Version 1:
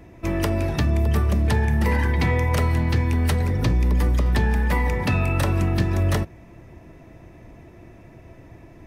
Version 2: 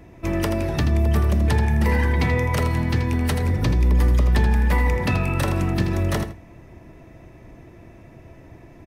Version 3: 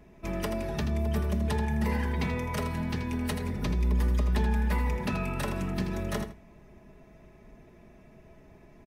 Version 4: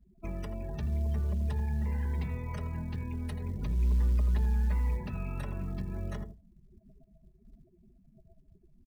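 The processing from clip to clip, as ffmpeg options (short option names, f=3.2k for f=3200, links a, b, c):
-af "aecho=1:1:81|162:0.355|0.0568"
-af "aecho=1:1:4.8:0.63,volume=-9dB"
-filter_complex "[0:a]afftdn=nr=35:nf=-41,acrossover=split=130[a][b];[b]acompressor=threshold=-41dB:ratio=12[c];[a][c]amix=inputs=2:normalize=0,acrusher=bits=9:mode=log:mix=0:aa=0.000001"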